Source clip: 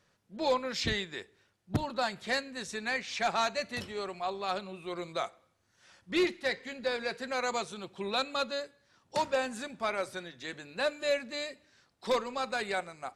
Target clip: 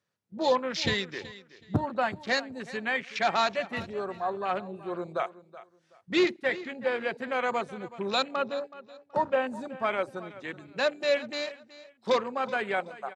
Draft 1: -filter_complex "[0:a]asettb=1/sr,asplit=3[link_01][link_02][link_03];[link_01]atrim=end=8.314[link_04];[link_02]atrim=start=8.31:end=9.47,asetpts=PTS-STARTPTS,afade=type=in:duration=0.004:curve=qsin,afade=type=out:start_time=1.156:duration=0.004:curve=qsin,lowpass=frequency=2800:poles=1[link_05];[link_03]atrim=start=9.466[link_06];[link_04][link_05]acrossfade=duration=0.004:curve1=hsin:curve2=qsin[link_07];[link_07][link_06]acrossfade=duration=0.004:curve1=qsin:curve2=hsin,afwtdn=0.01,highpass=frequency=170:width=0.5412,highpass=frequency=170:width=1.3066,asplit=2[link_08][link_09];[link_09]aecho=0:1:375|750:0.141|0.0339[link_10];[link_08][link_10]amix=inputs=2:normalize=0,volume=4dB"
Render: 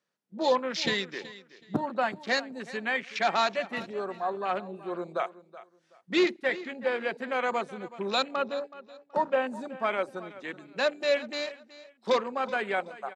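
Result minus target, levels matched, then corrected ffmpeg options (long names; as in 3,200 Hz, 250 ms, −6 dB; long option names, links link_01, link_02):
125 Hz band −6.5 dB
-filter_complex "[0:a]asettb=1/sr,asplit=3[link_01][link_02][link_03];[link_01]atrim=end=8.314[link_04];[link_02]atrim=start=8.31:end=9.47,asetpts=PTS-STARTPTS,afade=type=in:duration=0.004:curve=qsin,afade=type=out:start_time=1.156:duration=0.004:curve=qsin,lowpass=frequency=2800:poles=1[link_05];[link_03]atrim=start=9.466[link_06];[link_04][link_05]acrossfade=duration=0.004:curve1=hsin:curve2=qsin[link_07];[link_07][link_06]acrossfade=duration=0.004:curve1=qsin:curve2=hsin,afwtdn=0.01,highpass=frequency=83:width=0.5412,highpass=frequency=83:width=1.3066,asplit=2[link_08][link_09];[link_09]aecho=0:1:375|750:0.141|0.0339[link_10];[link_08][link_10]amix=inputs=2:normalize=0,volume=4dB"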